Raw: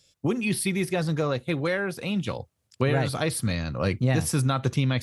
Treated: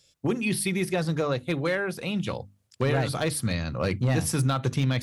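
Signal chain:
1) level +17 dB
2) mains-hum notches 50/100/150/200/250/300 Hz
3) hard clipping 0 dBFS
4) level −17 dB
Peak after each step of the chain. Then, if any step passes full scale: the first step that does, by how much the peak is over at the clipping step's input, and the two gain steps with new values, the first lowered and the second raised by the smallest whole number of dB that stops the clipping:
+6.0, +6.5, 0.0, −17.0 dBFS
step 1, 6.5 dB
step 1 +10 dB, step 4 −10 dB

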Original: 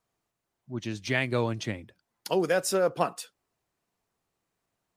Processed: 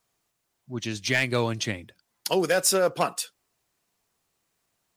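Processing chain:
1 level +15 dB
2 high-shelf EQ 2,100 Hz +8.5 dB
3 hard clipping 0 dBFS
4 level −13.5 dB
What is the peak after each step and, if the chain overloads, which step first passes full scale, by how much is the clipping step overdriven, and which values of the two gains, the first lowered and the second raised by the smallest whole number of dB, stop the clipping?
+4.5, +7.5, 0.0, −13.5 dBFS
step 1, 7.5 dB
step 1 +7 dB, step 4 −5.5 dB

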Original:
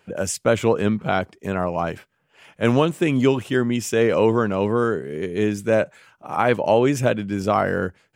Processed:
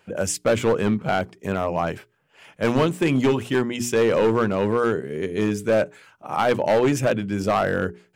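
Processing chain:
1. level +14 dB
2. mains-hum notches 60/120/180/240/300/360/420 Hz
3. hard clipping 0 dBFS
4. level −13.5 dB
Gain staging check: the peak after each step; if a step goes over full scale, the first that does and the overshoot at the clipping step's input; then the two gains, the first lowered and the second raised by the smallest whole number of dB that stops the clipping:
+9.0, +9.0, 0.0, −13.5 dBFS
step 1, 9.0 dB
step 1 +5 dB, step 4 −4.5 dB

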